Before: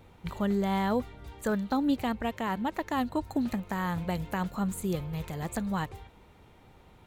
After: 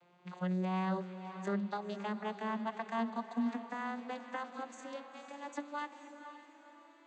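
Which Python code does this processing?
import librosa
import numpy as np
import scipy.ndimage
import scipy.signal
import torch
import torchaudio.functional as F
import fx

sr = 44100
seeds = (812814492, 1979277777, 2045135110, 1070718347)

y = fx.vocoder_glide(x, sr, note=53, semitones=11)
y = fx.highpass(y, sr, hz=1200.0, slope=6)
y = fx.echo_diffused(y, sr, ms=515, feedback_pct=41, wet_db=-10.0)
y = F.gain(torch.from_numpy(y), 6.5).numpy()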